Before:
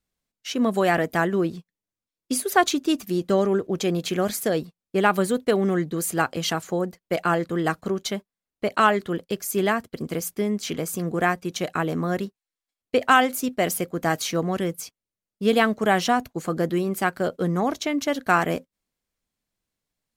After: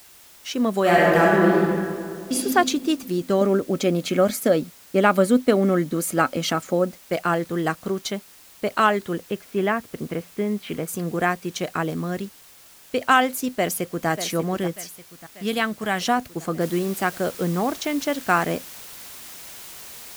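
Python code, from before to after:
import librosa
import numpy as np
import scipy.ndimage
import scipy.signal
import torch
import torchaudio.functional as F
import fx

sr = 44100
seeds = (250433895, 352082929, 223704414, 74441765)

y = fx.reverb_throw(x, sr, start_s=0.81, length_s=1.53, rt60_s=2.3, drr_db=-5.0)
y = fx.small_body(y, sr, hz=(260.0, 560.0, 1300.0, 2200.0), ring_ms=45, db=10, at=(3.41, 7.01))
y = fx.lowpass(y, sr, hz=3000.0, slope=24, at=(9.17, 10.87), fade=0.02)
y = fx.peak_eq(y, sr, hz=840.0, db=-5.0, octaves=2.7, at=(11.9, 13.02))
y = fx.echo_throw(y, sr, start_s=13.54, length_s=0.54, ms=590, feedback_pct=65, wet_db=-10.5)
y = fx.peak_eq(y, sr, hz=450.0, db=-7.5, octaves=2.4, at=(14.73, 16.01))
y = fx.noise_floor_step(y, sr, seeds[0], at_s=16.61, before_db=-49, after_db=-40, tilt_db=0.0)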